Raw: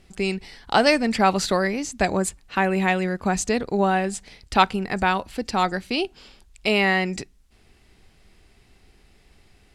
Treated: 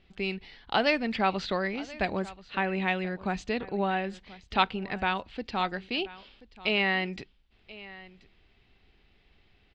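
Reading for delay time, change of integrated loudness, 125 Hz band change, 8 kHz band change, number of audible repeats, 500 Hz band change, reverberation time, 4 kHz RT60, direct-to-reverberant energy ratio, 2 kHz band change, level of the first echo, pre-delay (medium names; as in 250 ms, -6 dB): 1032 ms, -7.0 dB, -8.5 dB, under -20 dB, 1, -8.0 dB, no reverb, no reverb, no reverb, -5.5 dB, -19.0 dB, no reverb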